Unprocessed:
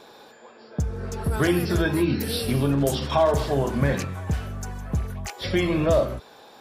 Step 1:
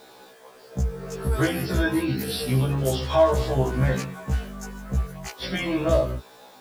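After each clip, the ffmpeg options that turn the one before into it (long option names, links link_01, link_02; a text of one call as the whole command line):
ffmpeg -i in.wav -af "acrusher=bits=8:mix=0:aa=0.000001,afftfilt=real='re*1.73*eq(mod(b,3),0)':imag='im*1.73*eq(mod(b,3),0)':win_size=2048:overlap=0.75,volume=1.5dB" out.wav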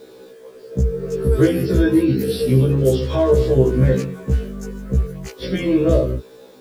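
ffmpeg -i in.wav -af "lowshelf=frequency=590:width_type=q:width=3:gain=7.5,volume=-1dB" out.wav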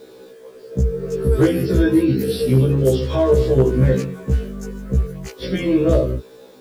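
ffmpeg -i in.wav -af "asoftclip=type=hard:threshold=-6dB" out.wav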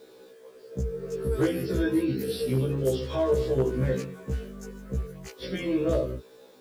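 ffmpeg -i in.wav -af "lowshelf=frequency=300:gain=-6,volume=-7dB" out.wav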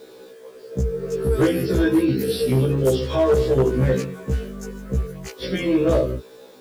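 ffmpeg -i in.wav -af "asoftclip=type=hard:threshold=-19dB,volume=7.5dB" out.wav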